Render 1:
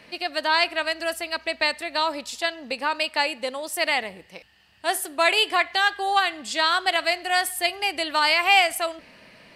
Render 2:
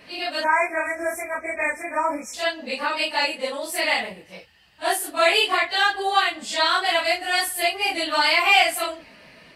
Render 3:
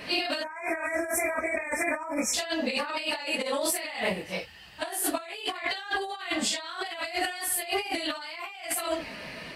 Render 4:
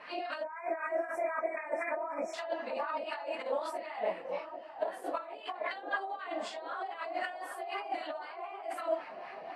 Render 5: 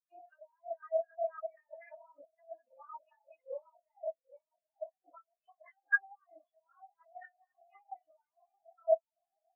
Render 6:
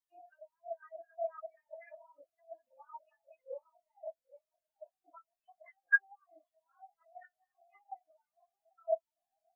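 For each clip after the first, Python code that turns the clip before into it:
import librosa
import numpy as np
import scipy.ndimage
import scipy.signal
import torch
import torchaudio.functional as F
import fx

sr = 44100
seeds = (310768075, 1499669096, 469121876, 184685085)

y1 = fx.phase_scramble(x, sr, seeds[0], window_ms=100)
y1 = fx.spec_erase(y1, sr, start_s=0.43, length_s=1.91, low_hz=2500.0, high_hz=5300.0)
y1 = F.gain(torch.from_numpy(y1), 1.5).numpy()
y2 = fx.over_compress(y1, sr, threshold_db=-33.0, ratio=-1.0)
y3 = fx.wah_lfo(y2, sr, hz=3.9, low_hz=590.0, high_hz=1300.0, q=2.2)
y3 = fx.echo_wet_bandpass(y3, sr, ms=789, feedback_pct=61, hz=520.0, wet_db=-6.0)
y4 = fx.dynamic_eq(y3, sr, hz=530.0, q=0.89, threshold_db=-45.0, ratio=4.0, max_db=-6)
y4 = fx.spectral_expand(y4, sr, expansion=4.0)
y4 = F.gain(torch.from_numpy(y4), 5.5).numpy()
y5 = fx.comb_cascade(y4, sr, direction='falling', hz=0.77)
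y5 = F.gain(torch.from_numpy(y5), 2.5).numpy()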